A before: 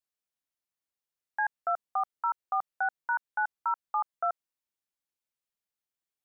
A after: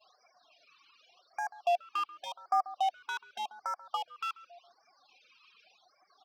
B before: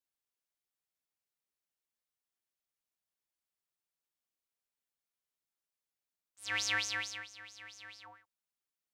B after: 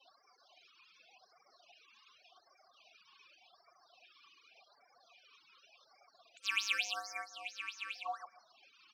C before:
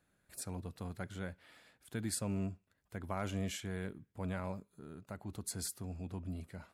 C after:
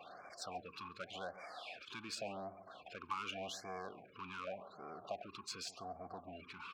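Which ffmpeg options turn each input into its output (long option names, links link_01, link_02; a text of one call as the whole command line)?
ffmpeg -i in.wav -filter_complex "[0:a]aeval=exprs='val(0)+0.5*0.00631*sgn(val(0))':channel_layout=same,lowpass=frequency=6100:width=0.5412,lowpass=frequency=6100:width=1.3066,afftfilt=real='re*gte(hypot(re,im),0.00224)':imag='im*gte(hypot(re,im),0.00224)':win_size=1024:overlap=0.75,adynamicequalizer=threshold=0.00178:dfrequency=4200:dqfactor=1.4:tfrequency=4200:tqfactor=1.4:attack=5:release=100:ratio=0.375:range=3.5:mode=cutabove:tftype=bell,asplit=2[link_01][link_02];[link_02]acompressor=threshold=-41dB:ratio=20,volume=0.5dB[link_03];[link_01][link_03]amix=inputs=2:normalize=0,asoftclip=type=tanh:threshold=-27dB,aeval=exprs='0.0447*(cos(1*acos(clip(val(0)/0.0447,-1,1)))-cos(1*PI/2))+0.00355*(cos(7*acos(clip(val(0)/0.0447,-1,1)))-cos(7*PI/2))':channel_layout=same,crystalizer=i=7.5:c=0,asplit=3[link_04][link_05][link_06];[link_04]bandpass=frequency=730:width_type=q:width=8,volume=0dB[link_07];[link_05]bandpass=frequency=1090:width_type=q:width=8,volume=-6dB[link_08];[link_06]bandpass=frequency=2440:width_type=q:width=8,volume=-9dB[link_09];[link_07][link_08][link_09]amix=inputs=3:normalize=0,asplit=2[link_10][link_11];[link_11]adelay=137,lowpass=frequency=1100:poles=1,volume=-14dB,asplit=2[link_12][link_13];[link_13]adelay=137,lowpass=frequency=1100:poles=1,volume=0.33,asplit=2[link_14][link_15];[link_15]adelay=137,lowpass=frequency=1100:poles=1,volume=0.33[link_16];[link_12][link_14][link_16]amix=inputs=3:normalize=0[link_17];[link_10][link_17]amix=inputs=2:normalize=0,afftfilt=real='re*(1-between(b*sr/1024,580*pow(3400/580,0.5+0.5*sin(2*PI*0.87*pts/sr))/1.41,580*pow(3400/580,0.5+0.5*sin(2*PI*0.87*pts/sr))*1.41))':imag='im*(1-between(b*sr/1024,580*pow(3400/580,0.5+0.5*sin(2*PI*0.87*pts/sr))/1.41,580*pow(3400/580,0.5+0.5*sin(2*PI*0.87*pts/sr))*1.41))':win_size=1024:overlap=0.75,volume=7.5dB" out.wav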